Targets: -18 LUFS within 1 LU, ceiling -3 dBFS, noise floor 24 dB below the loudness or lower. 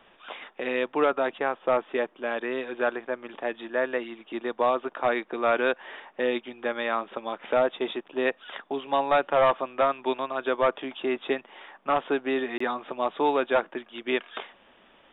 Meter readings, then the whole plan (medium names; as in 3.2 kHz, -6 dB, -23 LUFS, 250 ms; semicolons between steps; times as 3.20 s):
dropouts 1; longest dropout 24 ms; loudness -27.5 LUFS; peak level -13.0 dBFS; loudness target -18.0 LUFS
-> interpolate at 12.58 s, 24 ms; trim +9.5 dB